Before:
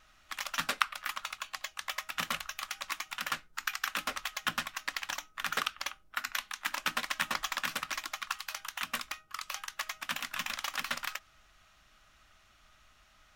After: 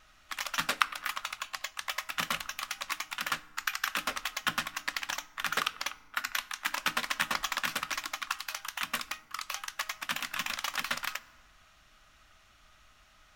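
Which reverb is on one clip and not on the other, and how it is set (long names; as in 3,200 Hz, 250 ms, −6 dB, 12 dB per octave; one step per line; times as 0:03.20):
feedback delay network reverb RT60 1.5 s, low-frequency decay 1.45×, high-frequency decay 0.55×, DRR 17.5 dB
level +2 dB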